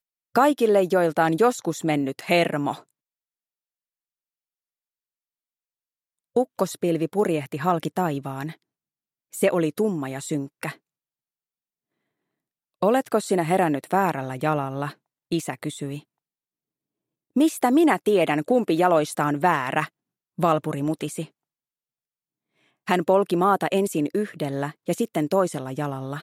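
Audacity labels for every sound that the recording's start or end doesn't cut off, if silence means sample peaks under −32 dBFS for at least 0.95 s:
6.370000	10.720000	sound
12.830000	15.990000	sound
17.360000	21.250000	sound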